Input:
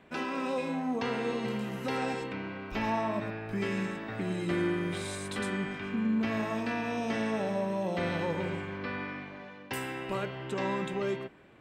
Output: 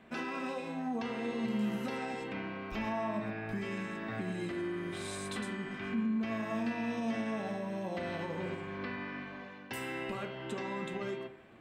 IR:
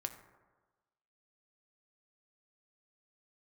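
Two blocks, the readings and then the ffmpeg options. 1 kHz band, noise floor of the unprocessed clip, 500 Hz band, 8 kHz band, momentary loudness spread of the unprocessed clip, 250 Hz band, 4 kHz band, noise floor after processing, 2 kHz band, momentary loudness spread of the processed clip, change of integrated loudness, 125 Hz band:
-5.0 dB, -48 dBFS, -5.5 dB, -4.0 dB, 7 LU, -3.0 dB, -4.5 dB, -50 dBFS, -4.0 dB, 6 LU, -4.0 dB, -5.5 dB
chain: -filter_complex "[0:a]alimiter=level_in=4dB:limit=-24dB:level=0:latency=1:release=302,volume=-4dB[a];[1:a]atrim=start_sample=2205,asetrate=83790,aresample=44100[b];[a][b]afir=irnorm=-1:irlink=0,volume=6.5dB"

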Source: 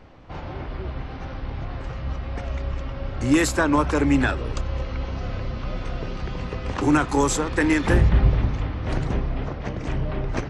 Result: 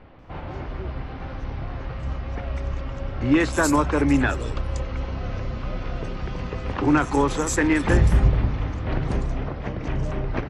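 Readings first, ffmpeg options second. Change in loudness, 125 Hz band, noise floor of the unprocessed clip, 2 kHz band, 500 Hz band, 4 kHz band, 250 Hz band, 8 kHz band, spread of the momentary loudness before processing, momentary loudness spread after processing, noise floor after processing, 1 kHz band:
0.0 dB, 0.0 dB, -34 dBFS, -0.5 dB, 0.0 dB, -2.5 dB, 0.0 dB, -1.0 dB, 14 LU, 14 LU, -34 dBFS, 0.0 dB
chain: -filter_complex "[0:a]acrossover=split=4200[a][b];[b]adelay=190[c];[a][c]amix=inputs=2:normalize=0"

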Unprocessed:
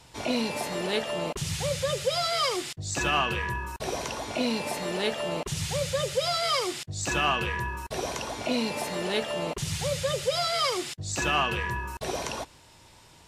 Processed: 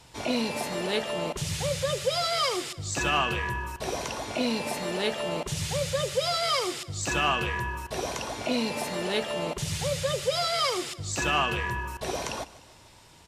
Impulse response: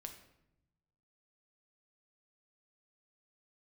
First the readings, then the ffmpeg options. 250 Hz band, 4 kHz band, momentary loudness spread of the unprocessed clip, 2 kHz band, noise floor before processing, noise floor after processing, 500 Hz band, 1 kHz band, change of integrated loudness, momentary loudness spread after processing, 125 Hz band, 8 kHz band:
0.0 dB, 0.0 dB, 8 LU, 0.0 dB, -54 dBFS, -53 dBFS, 0.0 dB, 0.0 dB, 0.0 dB, 8 LU, 0.0 dB, 0.0 dB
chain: -af "aecho=1:1:150|300|450|600:0.112|0.0606|0.0327|0.0177"

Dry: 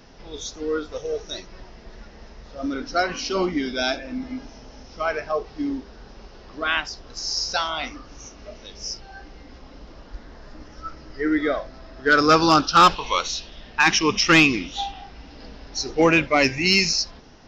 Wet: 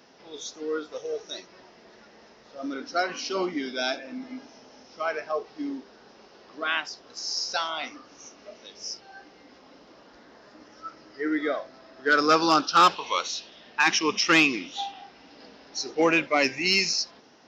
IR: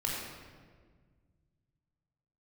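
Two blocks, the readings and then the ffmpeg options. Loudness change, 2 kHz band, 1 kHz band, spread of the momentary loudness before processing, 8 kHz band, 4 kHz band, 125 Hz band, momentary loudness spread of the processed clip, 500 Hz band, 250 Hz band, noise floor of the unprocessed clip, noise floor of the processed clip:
-4.0 dB, -4.0 dB, -4.0 dB, 20 LU, n/a, -4.0 dB, -12.5 dB, 19 LU, -4.5 dB, -6.0 dB, -45 dBFS, -54 dBFS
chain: -af "highpass=250,volume=-4dB"

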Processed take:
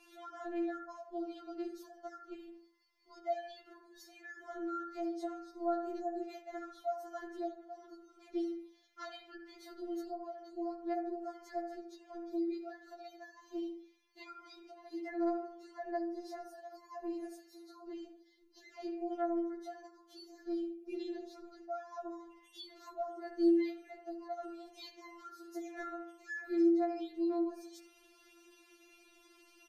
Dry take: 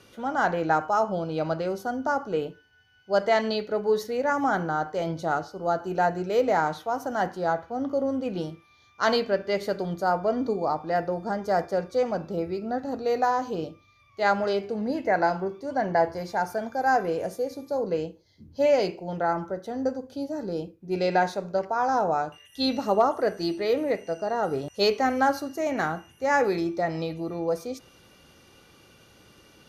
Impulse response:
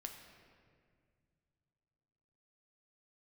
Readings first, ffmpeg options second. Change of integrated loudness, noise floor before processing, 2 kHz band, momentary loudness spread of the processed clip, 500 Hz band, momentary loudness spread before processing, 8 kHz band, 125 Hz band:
-13.0 dB, -58 dBFS, -20.0 dB, 17 LU, -15.5 dB, 8 LU, n/a, under -40 dB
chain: -filter_complex "[0:a]asplit=2[a][b];[b]adelay=71,lowpass=f=1.7k:p=1,volume=-9dB,asplit=2[c][d];[d]adelay=71,lowpass=f=1.7k:p=1,volume=0.34,asplit=2[e][f];[f]adelay=71,lowpass=f=1.7k:p=1,volume=0.34,asplit=2[g][h];[h]adelay=71,lowpass=f=1.7k:p=1,volume=0.34[i];[a][c][e][g][i]amix=inputs=5:normalize=0,acrossover=split=340[j][k];[k]acompressor=threshold=-35dB:ratio=10[l];[j][l]amix=inputs=2:normalize=0,afftfilt=real='re*4*eq(mod(b,16),0)':imag='im*4*eq(mod(b,16),0)':win_size=2048:overlap=0.75,volume=-5dB"

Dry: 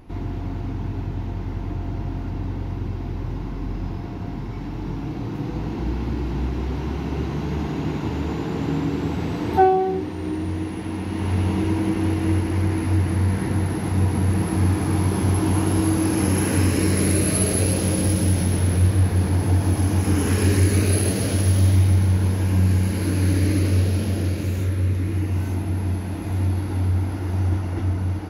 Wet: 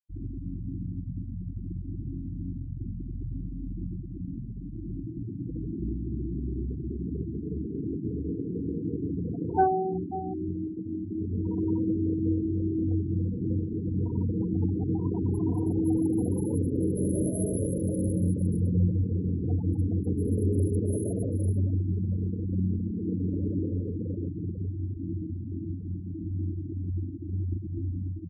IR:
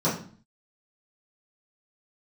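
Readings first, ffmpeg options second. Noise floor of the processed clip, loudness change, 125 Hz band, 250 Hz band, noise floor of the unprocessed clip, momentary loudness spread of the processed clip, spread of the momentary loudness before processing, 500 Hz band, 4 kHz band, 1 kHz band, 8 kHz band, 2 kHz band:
-37 dBFS, -8.0 dB, -9.0 dB, -5.0 dB, -29 dBFS, 11 LU, 11 LU, -7.0 dB, under -40 dB, -8.0 dB, -18.0 dB, under -20 dB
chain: -filter_complex "[0:a]asplit=2[a][b];[b]adelay=542.3,volume=-12dB,highshelf=f=4k:g=-12.2[c];[a][c]amix=inputs=2:normalize=0,asplit=2[d][e];[1:a]atrim=start_sample=2205[f];[e][f]afir=irnorm=-1:irlink=0,volume=-26dB[g];[d][g]amix=inputs=2:normalize=0,afftfilt=real='re*gte(hypot(re,im),0.158)':imag='im*gte(hypot(re,im),0.158)':win_size=1024:overlap=0.75,highshelf=f=4.1k:g=-8.5,volume=-6.5dB"

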